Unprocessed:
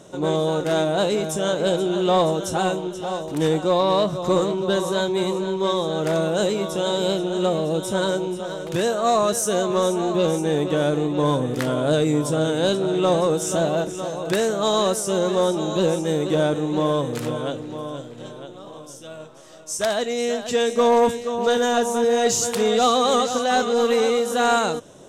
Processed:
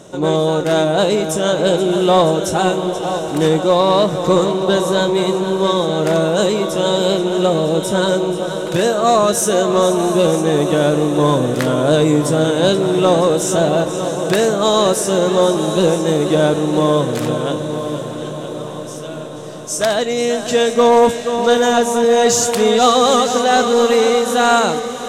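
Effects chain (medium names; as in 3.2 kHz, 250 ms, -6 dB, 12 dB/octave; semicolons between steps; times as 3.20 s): echo that smears into a reverb 720 ms, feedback 71%, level -12.5 dB; trim +6 dB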